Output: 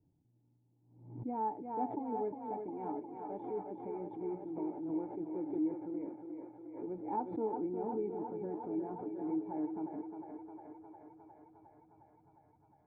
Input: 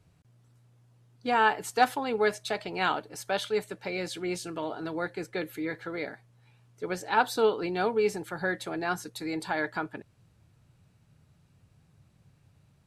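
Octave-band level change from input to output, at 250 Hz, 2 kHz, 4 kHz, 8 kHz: -2.0 dB, under -35 dB, under -40 dB, under -35 dB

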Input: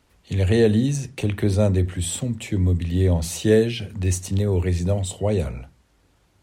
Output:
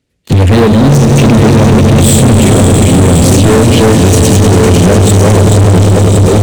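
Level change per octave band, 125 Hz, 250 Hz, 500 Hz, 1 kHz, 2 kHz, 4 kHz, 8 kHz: +17.0 dB, +17.5 dB, +14.5 dB, +26.0 dB, +17.5 dB, +18.0 dB, +18.5 dB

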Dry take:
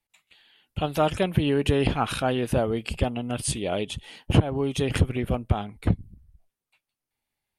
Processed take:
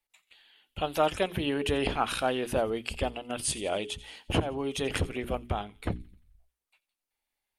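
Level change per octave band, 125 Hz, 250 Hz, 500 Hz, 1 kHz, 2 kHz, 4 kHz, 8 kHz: -11.5 dB, -7.0 dB, -3.5 dB, -2.0 dB, -1.5 dB, -1.5 dB, -1.5 dB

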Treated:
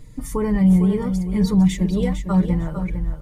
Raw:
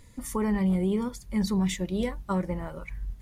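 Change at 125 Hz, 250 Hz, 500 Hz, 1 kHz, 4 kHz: +11.5 dB, +9.5 dB, +5.5 dB, +3.5 dB, +2.5 dB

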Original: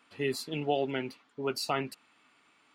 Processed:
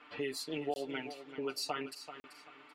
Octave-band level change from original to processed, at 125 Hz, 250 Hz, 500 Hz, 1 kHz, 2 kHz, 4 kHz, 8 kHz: -12.0 dB, -5.5 dB, -6.5 dB, -7.0 dB, -4.5 dB, -3.5 dB, -2.5 dB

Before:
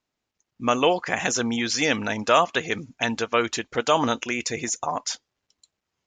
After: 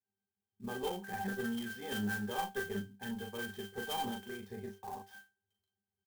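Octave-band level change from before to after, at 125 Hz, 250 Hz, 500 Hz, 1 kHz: -10.0 dB, -12.0 dB, -17.5 dB, -16.5 dB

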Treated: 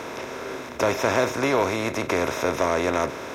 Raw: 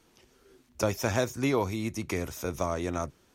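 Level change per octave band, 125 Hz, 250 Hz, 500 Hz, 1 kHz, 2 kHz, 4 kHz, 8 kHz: -0.5 dB, +4.0 dB, +8.0 dB, +10.0 dB, +10.0 dB, +8.0 dB, +4.5 dB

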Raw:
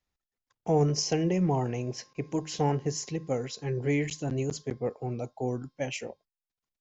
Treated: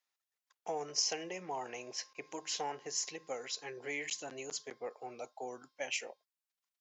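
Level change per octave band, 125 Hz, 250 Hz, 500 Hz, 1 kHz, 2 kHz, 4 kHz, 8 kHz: -30.5 dB, -20.0 dB, -12.0 dB, -7.0 dB, -2.0 dB, -0.5 dB, no reading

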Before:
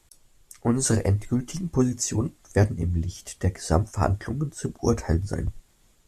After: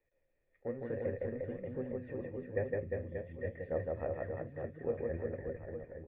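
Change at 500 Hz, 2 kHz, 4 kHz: -6.5 dB, -10.5 dB, under -35 dB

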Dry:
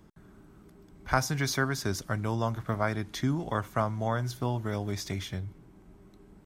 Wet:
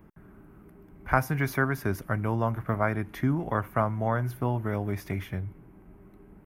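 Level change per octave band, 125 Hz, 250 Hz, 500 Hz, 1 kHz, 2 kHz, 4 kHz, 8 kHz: +2.5 dB, +2.5 dB, +2.5 dB, +2.5 dB, +2.5 dB, -11.5 dB, -10.0 dB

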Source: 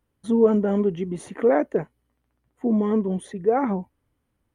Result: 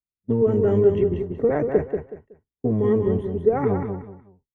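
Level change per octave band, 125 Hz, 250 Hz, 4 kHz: +7.0 dB, -1.5 dB, no reading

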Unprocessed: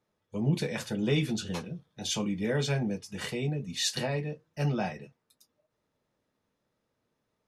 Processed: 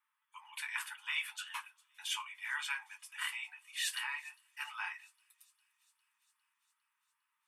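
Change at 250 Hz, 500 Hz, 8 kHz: under -40 dB, under -40 dB, -6.5 dB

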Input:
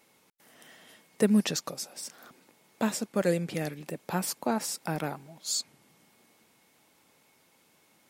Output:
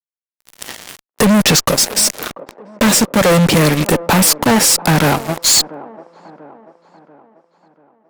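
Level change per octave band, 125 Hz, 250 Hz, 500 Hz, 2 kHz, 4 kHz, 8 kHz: +19.5 dB, +15.5 dB, +15.5 dB, +21.0 dB, +22.0 dB, +21.5 dB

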